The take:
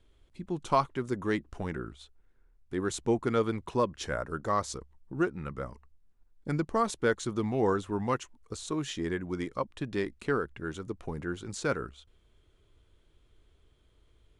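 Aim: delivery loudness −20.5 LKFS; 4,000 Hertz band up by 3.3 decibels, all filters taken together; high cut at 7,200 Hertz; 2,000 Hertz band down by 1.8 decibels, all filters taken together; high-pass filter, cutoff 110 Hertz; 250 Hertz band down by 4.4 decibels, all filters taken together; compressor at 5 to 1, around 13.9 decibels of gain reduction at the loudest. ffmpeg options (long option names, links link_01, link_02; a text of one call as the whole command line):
ffmpeg -i in.wav -af "highpass=110,lowpass=7200,equalizer=frequency=250:width_type=o:gain=-6,equalizer=frequency=2000:width_type=o:gain=-3.5,equalizer=frequency=4000:width_type=o:gain=5.5,acompressor=threshold=-37dB:ratio=5,volume=22dB" out.wav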